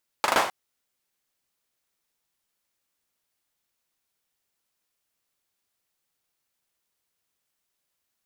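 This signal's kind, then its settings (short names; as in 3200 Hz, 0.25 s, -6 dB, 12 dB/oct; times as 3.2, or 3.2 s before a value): hand clap length 0.26 s, apart 40 ms, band 850 Hz, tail 0.47 s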